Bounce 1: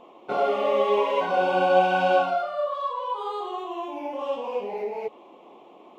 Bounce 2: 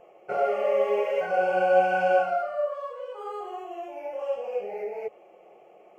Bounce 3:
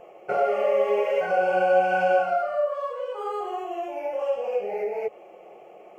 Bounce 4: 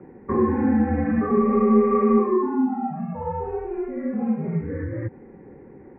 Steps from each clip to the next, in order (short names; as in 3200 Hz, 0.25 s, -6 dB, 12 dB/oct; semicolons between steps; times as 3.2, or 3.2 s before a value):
fixed phaser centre 1000 Hz, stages 6
compressor 1.5:1, threshold -32 dBFS, peak gain reduction 6.5 dB; gain +6 dB
mistuned SSB -330 Hz 490–2100 Hz; gain +4 dB